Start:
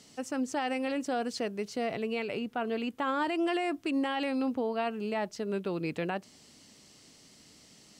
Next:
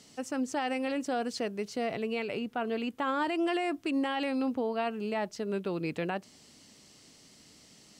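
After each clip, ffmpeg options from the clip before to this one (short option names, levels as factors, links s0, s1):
-af anull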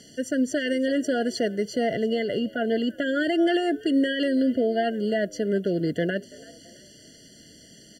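-filter_complex "[0:a]asplit=4[s0][s1][s2][s3];[s1]adelay=333,afreqshift=89,volume=0.0794[s4];[s2]adelay=666,afreqshift=178,volume=0.0335[s5];[s3]adelay=999,afreqshift=267,volume=0.014[s6];[s0][s4][s5][s6]amix=inputs=4:normalize=0,afftfilt=real='re*eq(mod(floor(b*sr/1024/690),2),0)':imag='im*eq(mod(floor(b*sr/1024/690),2),0)':win_size=1024:overlap=0.75,volume=2.66"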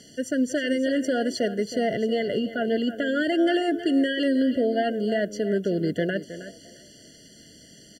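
-af "aecho=1:1:317:0.224"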